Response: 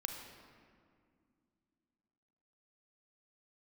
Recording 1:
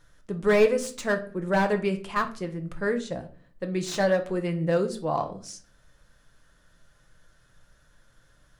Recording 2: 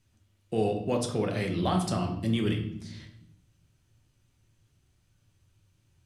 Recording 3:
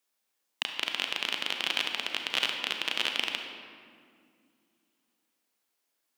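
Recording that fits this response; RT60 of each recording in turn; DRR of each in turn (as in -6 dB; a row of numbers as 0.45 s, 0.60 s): 3; 0.45 s, 0.75 s, 2.2 s; 5.5 dB, 2.0 dB, 3.5 dB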